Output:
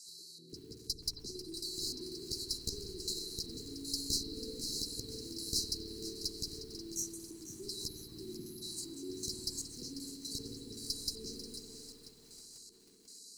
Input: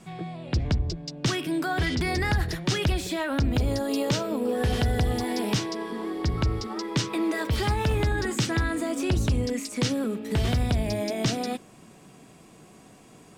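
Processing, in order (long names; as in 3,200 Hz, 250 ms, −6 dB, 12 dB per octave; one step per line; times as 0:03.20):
variable-slope delta modulation 64 kbit/s
gain on a spectral selection 0:07.88–0:08.62, 400–10,000 Hz −22 dB
first-order pre-emphasis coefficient 0.9
time-frequency box erased 0:06.81–0:07.63, 400–5,600 Hz
low-shelf EQ 84 Hz −11 dB
in parallel at +2 dB: downward compressor 10 to 1, threshold −50 dBFS, peak gain reduction 18.5 dB
on the sum: auto-filter band-pass square 1.3 Hz 830–3,400 Hz
asymmetric clip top −47.5 dBFS
linear-phase brick-wall band-stop 470–3,900 Hz
spring reverb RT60 3.5 s, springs 54 ms, chirp 40 ms, DRR 0 dB
feedback echo at a low word length 493 ms, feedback 55%, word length 11 bits, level −11.5 dB
level +13 dB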